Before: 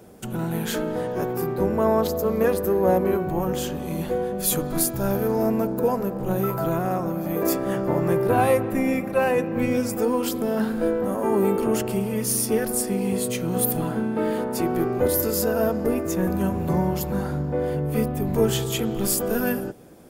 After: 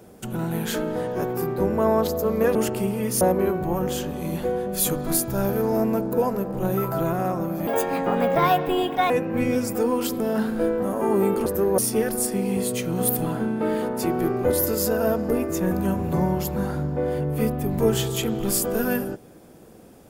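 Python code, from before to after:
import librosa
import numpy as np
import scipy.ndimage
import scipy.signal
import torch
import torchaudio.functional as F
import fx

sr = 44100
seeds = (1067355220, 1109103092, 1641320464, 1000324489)

y = fx.edit(x, sr, fx.swap(start_s=2.55, length_s=0.32, other_s=11.68, other_length_s=0.66),
    fx.speed_span(start_s=7.33, length_s=1.99, speed=1.39), tone=tone)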